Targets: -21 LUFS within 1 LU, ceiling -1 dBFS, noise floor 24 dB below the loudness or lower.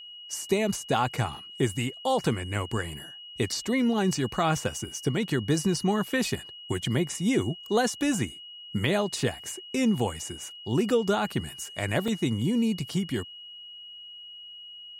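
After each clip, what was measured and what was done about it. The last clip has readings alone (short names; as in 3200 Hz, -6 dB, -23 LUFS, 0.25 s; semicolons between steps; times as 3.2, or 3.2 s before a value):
dropouts 2; longest dropout 3.7 ms; steady tone 2900 Hz; tone level -42 dBFS; loudness -28.0 LUFS; peak -12.0 dBFS; loudness target -21.0 LUFS
-> interpolate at 3.52/12.08, 3.7 ms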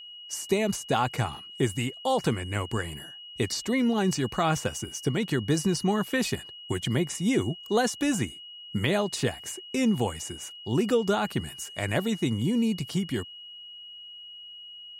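dropouts 0; steady tone 2900 Hz; tone level -42 dBFS
-> notch 2900 Hz, Q 30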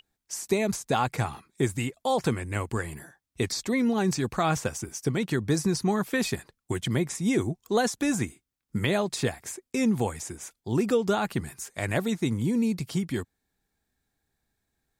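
steady tone none; loudness -28.0 LUFS; peak -12.0 dBFS; loudness target -21.0 LUFS
-> gain +7 dB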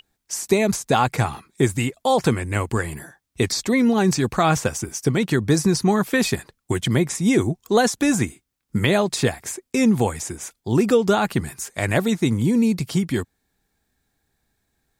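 loudness -21.0 LUFS; peak -5.0 dBFS; noise floor -77 dBFS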